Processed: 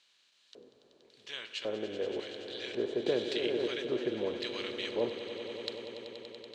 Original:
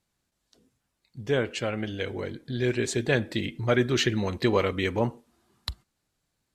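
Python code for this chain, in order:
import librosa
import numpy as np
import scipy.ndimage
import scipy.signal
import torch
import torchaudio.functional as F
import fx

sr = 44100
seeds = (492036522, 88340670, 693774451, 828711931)

y = fx.bin_compress(x, sr, power=0.6)
y = fx.filter_lfo_bandpass(y, sr, shape='square', hz=0.91, low_hz=460.0, high_hz=3600.0, q=2.1)
y = fx.echo_swell(y, sr, ms=95, loudest=5, wet_db=-14.0)
y = fx.band_squash(y, sr, depth_pct=100, at=(3.06, 3.68))
y = y * librosa.db_to_amplitude(-5.5)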